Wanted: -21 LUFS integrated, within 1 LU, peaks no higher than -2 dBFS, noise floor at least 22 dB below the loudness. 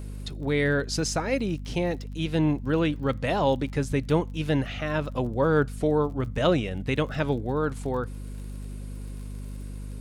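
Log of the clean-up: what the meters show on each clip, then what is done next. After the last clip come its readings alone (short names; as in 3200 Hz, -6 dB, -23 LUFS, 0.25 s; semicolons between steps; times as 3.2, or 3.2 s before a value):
ticks 38/s; hum 50 Hz; harmonics up to 250 Hz; hum level -33 dBFS; loudness -26.5 LUFS; peak -9.5 dBFS; loudness target -21.0 LUFS
-> de-click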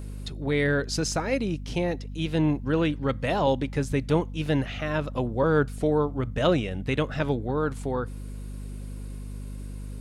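ticks 0.20/s; hum 50 Hz; harmonics up to 250 Hz; hum level -34 dBFS
-> notches 50/100/150/200/250 Hz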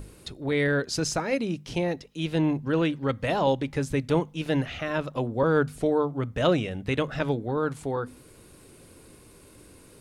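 hum none; loudness -27.0 LUFS; peak -9.0 dBFS; loudness target -21.0 LUFS
-> gain +6 dB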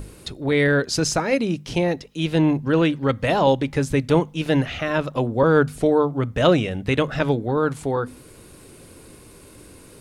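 loudness -21.0 LUFS; peak -3.0 dBFS; noise floor -46 dBFS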